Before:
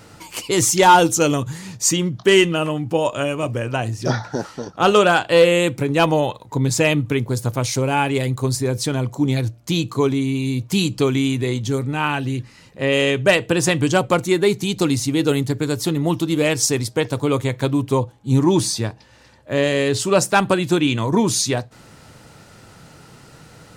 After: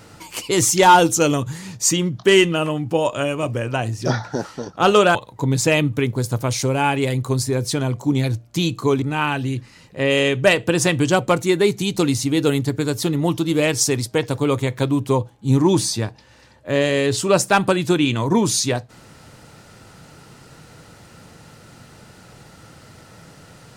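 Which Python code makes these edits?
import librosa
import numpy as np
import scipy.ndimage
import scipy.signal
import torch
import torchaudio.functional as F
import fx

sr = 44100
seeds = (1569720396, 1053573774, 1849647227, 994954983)

y = fx.edit(x, sr, fx.cut(start_s=5.15, length_s=1.13),
    fx.cut(start_s=10.15, length_s=1.69), tone=tone)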